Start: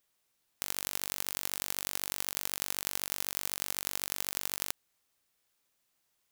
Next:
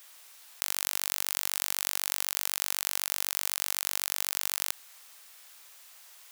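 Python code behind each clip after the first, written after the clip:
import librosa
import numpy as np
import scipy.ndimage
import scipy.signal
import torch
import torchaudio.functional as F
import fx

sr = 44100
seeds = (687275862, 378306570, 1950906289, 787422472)

y = scipy.signal.sosfilt(scipy.signal.butter(2, 760.0, 'highpass', fs=sr, output='sos'), x)
y = fx.env_flatten(y, sr, amount_pct=50)
y = y * 10.0 ** (2.5 / 20.0)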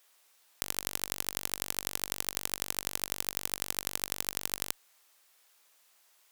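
y = fx.low_shelf(x, sr, hz=500.0, db=9.5)
y = fx.cheby_harmonics(y, sr, harmonics=(3,), levels_db=(-8,), full_scale_db=-0.5)
y = y * 10.0 ** (1.5 / 20.0)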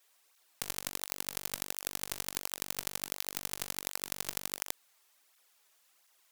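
y = fx.flanger_cancel(x, sr, hz=1.4, depth_ms=4.2)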